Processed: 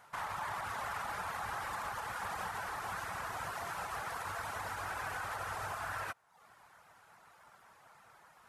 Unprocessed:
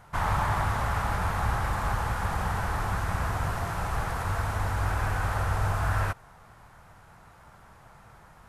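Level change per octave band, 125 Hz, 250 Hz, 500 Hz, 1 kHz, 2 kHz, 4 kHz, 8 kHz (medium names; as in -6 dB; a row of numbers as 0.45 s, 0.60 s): -23.5 dB, -17.0 dB, -10.0 dB, -8.5 dB, -7.0 dB, -6.0 dB, -5.5 dB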